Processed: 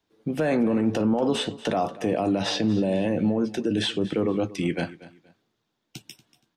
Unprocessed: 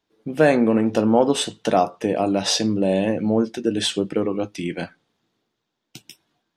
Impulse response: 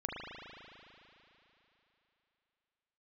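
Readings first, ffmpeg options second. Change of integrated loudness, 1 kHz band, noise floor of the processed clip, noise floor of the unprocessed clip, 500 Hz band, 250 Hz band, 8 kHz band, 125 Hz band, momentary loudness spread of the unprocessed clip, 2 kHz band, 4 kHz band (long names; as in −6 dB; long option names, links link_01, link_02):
−4.5 dB, −6.5 dB, −78 dBFS, −78 dBFS, −5.5 dB, −3.0 dB, −11.0 dB, −1.0 dB, 10 LU, −4.5 dB, −5.0 dB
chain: -filter_complex "[0:a]equalizer=frequency=83:width=0.47:gain=3.5,acrossover=split=290|690|3600[link_01][link_02][link_03][link_04];[link_04]acompressor=threshold=-40dB:ratio=6[link_05];[link_01][link_02][link_03][link_05]amix=inputs=4:normalize=0,alimiter=limit=-15dB:level=0:latency=1:release=26,aecho=1:1:236|472:0.126|0.0327"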